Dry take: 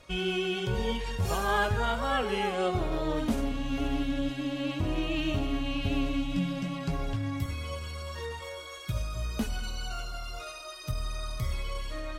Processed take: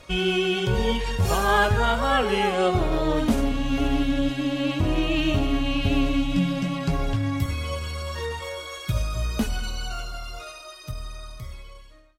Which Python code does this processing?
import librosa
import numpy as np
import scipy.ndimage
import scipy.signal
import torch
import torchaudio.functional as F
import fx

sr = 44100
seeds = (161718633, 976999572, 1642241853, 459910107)

y = fx.fade_out_tail(x, sr, length_s=3.03)
y = y * 10.0 ** (7.0 / 20.0)